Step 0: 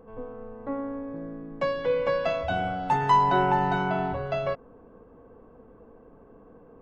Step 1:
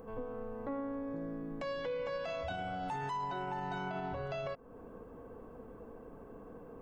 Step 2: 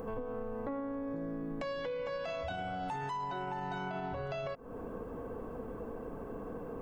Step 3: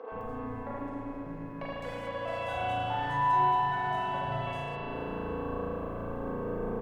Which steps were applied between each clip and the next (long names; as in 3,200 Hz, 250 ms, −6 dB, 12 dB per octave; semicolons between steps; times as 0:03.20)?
downward compressor 2.5 to 1, threshold −40 dBFS, peak gain reduction 15.5 dB; high-shelf EQ 4,900 Hz +11 dB; brickwall limiter −31.5 dBFS, peak gain reduction 9 dB; level +1 dB
downward compressor, threshold −44 dBFS, peak gain reduction 9 dB; level +8.5 dB
running median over 9 samples; three-band delay without the direct sound mids, lows, highs 120/210 ms, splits 370/4,000 Hz; convolution reverb RT60 3.7 s, pre-delay 35 ms, DRR −9 dB